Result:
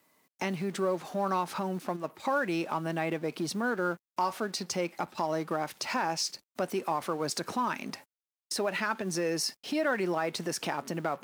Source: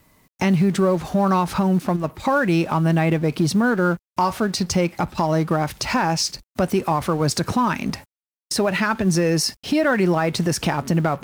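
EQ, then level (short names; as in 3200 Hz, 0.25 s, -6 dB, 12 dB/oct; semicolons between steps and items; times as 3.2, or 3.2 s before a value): HPF 290 Hz 12 dB/oct; -9.0 dB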